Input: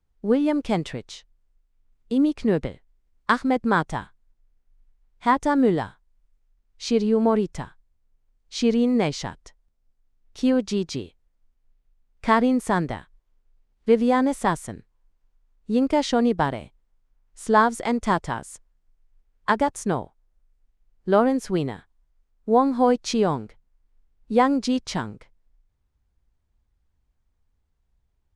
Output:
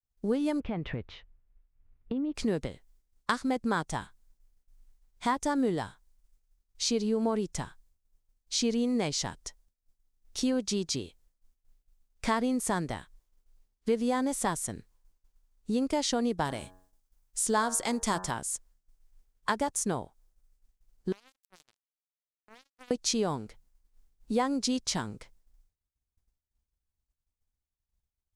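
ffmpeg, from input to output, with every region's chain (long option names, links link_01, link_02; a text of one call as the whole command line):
ffmpeg -i in.wav -filter_complex "[0:a]asettb=1/sr,asplit=3[link_01][link_02][link_03];[link_01]atrim=end=0.604[link_04];[link_02]atrim=start=0.6:end=2.35,asetpts=PTS-STARTPTS,afade=type=in:duration=0.004:curve=qsin,afade=type=out:start_time=1.746:duration=0.004:curve=qsin,lowpass=frequency=2500:width=0.5412,lowpass=frequency=2500:width=1.3066,equalizer=frequency=69:width_type=o:width=1.9:gain=9.5,acompressor=threshold=-26dB:ratio=4:attack=3.2:release=140:knee=1:detection=peak[link_05];[link_03]atrim=start=2.346[link_06];[link_04][link_05]acrossfade=duration=0.004:curve1=hsin:curve2=qsin[link_07];[link_07][link_06]acrossfade=duration=0.004:curve1=qsin:curve2=hsin,asettb=1/sr,asplit=3[link_08][link_09][link_10];[link_08]atrim=end=16.454[link_11];[link_09]atrim=start=16.45:end=18.31,asetpts=PTS-STARTPTS,afade=type=in:duration=0.004:curve=qsin,afade=type=out:start_time=1.856:duration=0.004:curve=qsin,highshelf=frequency=4200:gain=7,bandreject=frequency=92.45:width_type=h:width=4,bandreject=frequency=184.9:width_type=h:width=4,bandreject=frequency=277.35:width_type=h:width=4,bandreject=frequency=369.8:width_type=h:width=4,bandreject=frequency=462.25:width_type=h:width=4,bandreject=frequency=554.7:width_type=h:width=4,bandreject=frequency=647.15:width_type=h:width=4,bandreject=frequency=739.6:width_type=h:width=4,bandreject=frequency=832.05:width_type=h:width=4,bandreject=frequency=924.5:width_type=h:width=4,bandreject=frequency=1016.95:width_type=h:width=4,bandreject=frequency=1109.4:width_type=h:width=4,bandreject=frequency=1201.85:width_type=h:width=4,bandreject=frequency=1294.3:width_type=h:width=4,bandreject=frequency=1386.75:width_type=h:width=4,bandreject=frequency=1479.2:width_type=h:width=4,bandreject=frequency=1571.65:width_type=h:width=4,bandreject=frequency=1664.1:width_type=h:width=4,bandreject=frequency=1756.55:width_type=h:width=4,bandreject=frequency=1849:width_type=h:width=4[link_12];[link_10]atrim=start=18.306[link_13];[link_11][link_12]acrossfade=duration=0.004:curve1=hsin:curve2=qsin[link_14];[link_14][link_13]acrossfade=duration=0.004:curve1=qsin:curve2=hsin,asettb=1/sr,asplit=3[link_15][link_16][link_17];[link_15]atrim=end=21.124[link_18];[link_16]atrim=start=21.12:end=22.91,asetpts=PTS-STARTPTS,afade=type=in:duration=0.004:curve=qsin,afade=type=out:start_time=1.786:duration=0.004:curve=qsin,highpass=frequency=80:poles=1,acompressor=threshold=-31dB:ratio=8:attack=3.2:release=140:knee=1:detection=peak,acrusher=bits=3:mix=0:aa=0.5[link_19];[link_17]atrim=start=22.906[link_20];[link_18][link_19]acrossfade=duration=0.004:curve1=hsin:curve2=qsin[link_21];[link_21][link_20]acrossfade=duration=0.004:curve1=qsin:curve2=hsin,agate=range=-33dB:threshold=-57dB:ratio=3:detection=peak,bass=frequency=250:gain=0,treble=frequency=4000:gain=12,acompressor=threshold=-32dB:ratio=2" out.wav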